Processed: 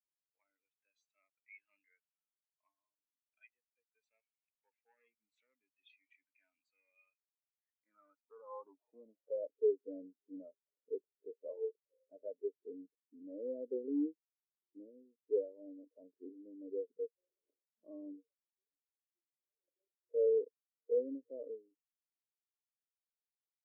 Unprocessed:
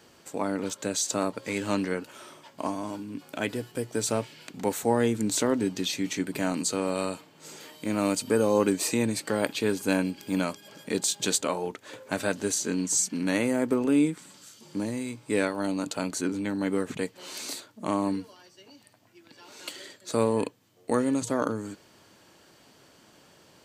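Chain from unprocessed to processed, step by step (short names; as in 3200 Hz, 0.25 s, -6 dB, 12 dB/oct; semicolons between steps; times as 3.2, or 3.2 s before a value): overloaded stage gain 21 dB; band-pass sweep 2300 Hz -> 470 Hz, 7.41–9.56; spectral expander 2.5:1; gain -1.5 dB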